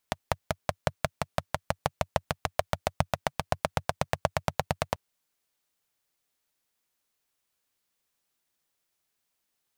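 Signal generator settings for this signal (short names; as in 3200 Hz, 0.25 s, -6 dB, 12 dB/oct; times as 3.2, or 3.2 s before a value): single-cylinder engine model, changing speed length 4.84 s, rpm 600, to 1100, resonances 93/140/620 Hz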